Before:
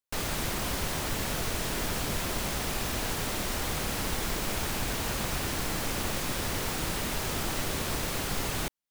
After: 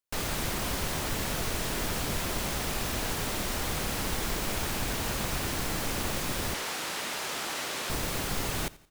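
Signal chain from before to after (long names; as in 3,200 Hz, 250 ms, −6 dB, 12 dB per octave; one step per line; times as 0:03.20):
0:06.54–0:07.90: meter weighting curve A
repeating echo 86 ms, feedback 41%, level −21 dB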